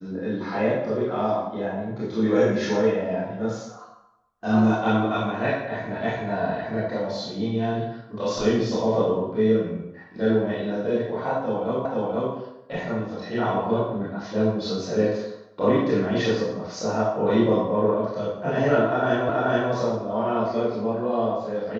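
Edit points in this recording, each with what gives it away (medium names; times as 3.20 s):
11.85 s: repeat of the last 0.48 s
19.29 s: repeat of the last 0.43 s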